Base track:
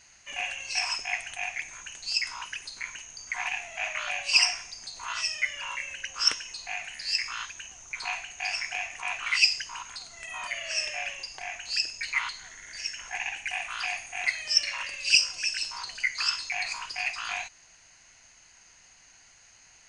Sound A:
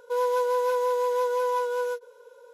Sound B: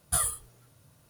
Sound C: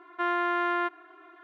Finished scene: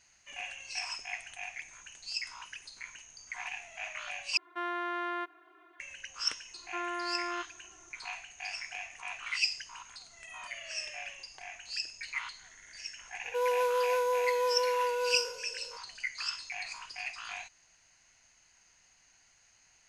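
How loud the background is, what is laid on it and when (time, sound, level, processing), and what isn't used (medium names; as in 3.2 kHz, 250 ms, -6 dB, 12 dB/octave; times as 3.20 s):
base track -8.5 dB
4.37 s: replace with C -8.5 dB + treble shelf 4.3 kHz +10 dB
6.54 s: add C -9 dB
13.24 s: add A -4.5 dB + spectral sustain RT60 0.87 s
not used: B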